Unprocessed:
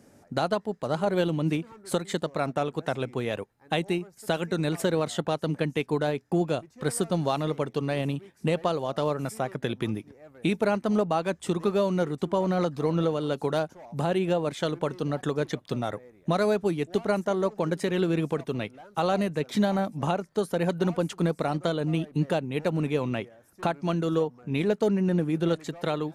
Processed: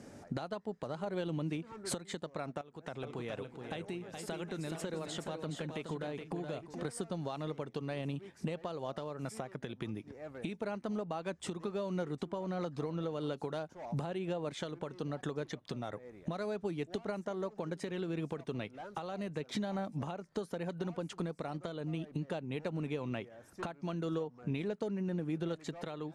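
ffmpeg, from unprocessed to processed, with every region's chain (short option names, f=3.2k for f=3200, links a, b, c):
-filter_complex "[0:a]asettb=1/sr,asplit=3[a][b][c];[a]atrim=end=2.614[d];[b]atrim=start=2.61:end=6.85,asetpts=PTS-STARTPTS,afade=t=in:d=0.004:c=qsin,afade=t=out:st=4.236:d=0.004:c=qsin,acompressor=threshold=-46dB:ratio=3:attack=3.2:release=140:knee=1:detection=peak,aecho=1:1:421|458|771:0.473|0.106|0.2,atrim=end_sample=186984[e];[c]atrim=start=6.846[f];[d][e]acrossfade=d=0.004:c1=hsin:c2=qsin[g];[g][f]acrossfade=d=0.004:c1=qsin:c2=hsin,lowpass=8.2k,acompressor=threshold=-36dB:ratio=10,alimiter=level_in=5.5dB:limit=-24dB:level=0:latency=1:release=497,volume=-5.5dB,volume=4dB"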